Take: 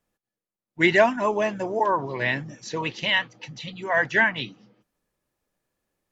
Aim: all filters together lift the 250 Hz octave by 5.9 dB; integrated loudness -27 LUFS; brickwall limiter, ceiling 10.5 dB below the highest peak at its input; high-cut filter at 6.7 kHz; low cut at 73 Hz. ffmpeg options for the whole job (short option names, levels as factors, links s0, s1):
-af "highpass=73,lowpass=6700,equalizer=f=250:t=o:g=8.5,volume=0.841,alimiter=limit=0.168:level=0:latency=1"